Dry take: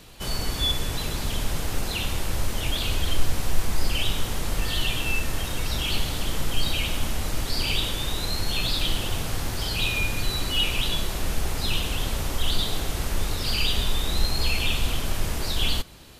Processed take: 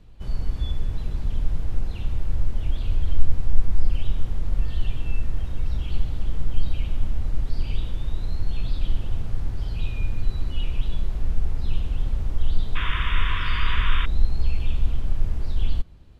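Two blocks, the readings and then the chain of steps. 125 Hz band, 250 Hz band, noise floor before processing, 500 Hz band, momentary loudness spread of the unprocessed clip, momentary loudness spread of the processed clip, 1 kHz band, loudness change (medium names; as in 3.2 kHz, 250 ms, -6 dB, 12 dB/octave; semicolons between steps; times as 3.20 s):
+2.0 dB, -5.5 dB, -31 dBFS, -10.0 dB, 5 LU, 5 LU, -4.0 dB, -2.5 dB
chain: painted sound noise, 12.75–14.06 s, 950–3700 Hz -15 dBFS; RIAA curve playback; trim -13 dB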